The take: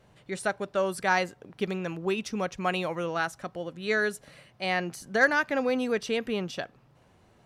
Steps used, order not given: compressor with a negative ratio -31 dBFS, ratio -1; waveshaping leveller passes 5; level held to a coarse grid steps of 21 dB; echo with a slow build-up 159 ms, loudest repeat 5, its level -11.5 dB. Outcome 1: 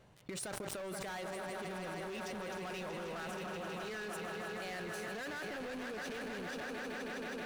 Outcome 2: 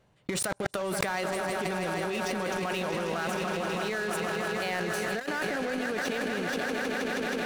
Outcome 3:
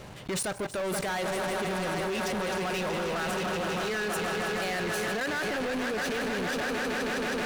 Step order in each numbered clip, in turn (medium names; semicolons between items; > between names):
echo with a slow build-up > waveshaping leveller > compressor with a negative ratio > level held to a coarse grid; echo with a slow build-up > level held to a coarse grid > waveshaping leveller > compressor with a negative ratio; echo with a slow build-up > level held to a coarse grid > compressor with a negative ratio > waveshaping leveller